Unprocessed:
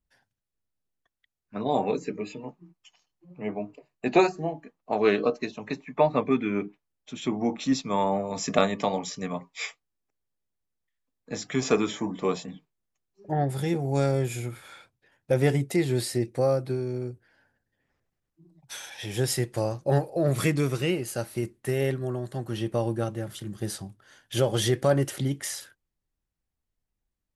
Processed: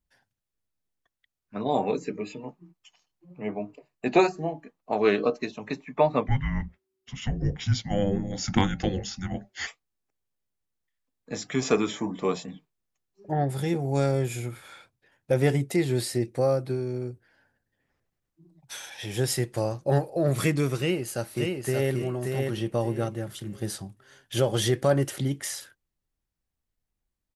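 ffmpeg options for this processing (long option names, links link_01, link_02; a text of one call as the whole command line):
ffmpeg -i in.wav -filter_complex "[0:a]asplit=3[link_01][link_02][link_03];[link_01]afade=type=out:start_time=6.26:duration=0.02[link_04];[link_02]afreqshift=-380,afade=type=in:start_time=6.26:duration=0.02,afade=type=out:start_time=9.66:duration=0.02[link_05];[link_03]afade=type=in:start_time=9.66:duration=0.02[link_06];[link_04][link_05][link_06]amix=inputs=3:normalize=0,asplit=2[link_07][link_08];[link_08]afade=type=in:start_time=20.78:duration=0.01,afade=type=out:start_time=21.92:duration=0.01,aecho=0:1:580|1160|1740|2320:0.668344|0.167086|0.0417715|0.0104429[link_09];[link_07][link_09]amix=inputs=2:normalize=0" out.wav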